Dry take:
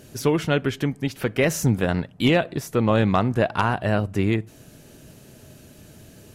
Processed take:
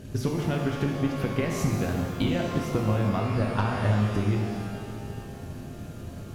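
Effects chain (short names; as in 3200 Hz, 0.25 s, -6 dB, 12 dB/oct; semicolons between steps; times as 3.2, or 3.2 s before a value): high shelf 6000 Hz -8 dB; transient shaper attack +6 dB, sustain +2 dB; low shelf 180 Hz +11.5 dB; compressor 6:1, threshold -23 dBFS, peak gain reduction 17 dB; shimmer reverb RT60 2 s, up +12 st, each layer -8 dB, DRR 0.5 dB; gain -2 dB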